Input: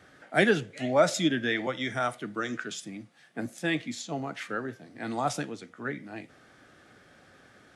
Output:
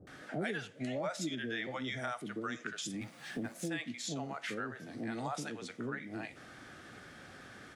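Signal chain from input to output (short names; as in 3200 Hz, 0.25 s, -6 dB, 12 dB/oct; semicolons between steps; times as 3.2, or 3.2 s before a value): 2.94–3.61 G.711 law mismatch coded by mu; bands offset in time lows, highs 70 ms, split 540 Hz; compressor 4:1, threshold -43 dBFS, peak gain reduction 20 dB; gain +5 dB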